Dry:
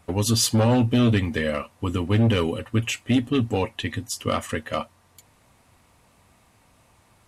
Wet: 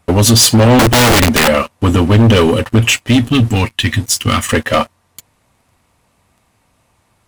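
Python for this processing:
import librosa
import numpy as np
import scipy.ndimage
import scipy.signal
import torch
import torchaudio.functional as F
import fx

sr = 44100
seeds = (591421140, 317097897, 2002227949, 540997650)

y = fx.peak_eq(x, sr, hz=560.0, db=-14.5, octaves=1.5, at=(3.08, 4.49))
y = fx.leveller(y, sr, passes=3)
y = fx.overflow_wrap(y, sr, gain_db=12.0, at=(0.79, 1.48))
y = y * 10.0 ** (6.0 / 20.0)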